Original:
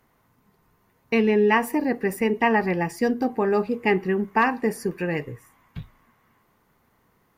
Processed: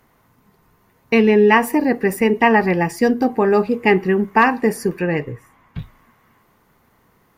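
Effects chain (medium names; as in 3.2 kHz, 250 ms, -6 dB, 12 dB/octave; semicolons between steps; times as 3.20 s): 4.99–5.79 s: treble shelf 4.6 kHz -10 dB; trim +6.5 dB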